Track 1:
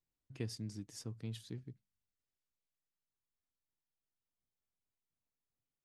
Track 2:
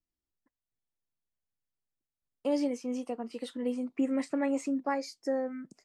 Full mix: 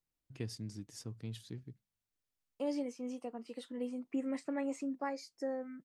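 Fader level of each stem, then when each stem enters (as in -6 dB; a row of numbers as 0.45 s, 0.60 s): 0.0 dB, -7.0 dB; 0.00 s, 0.15 s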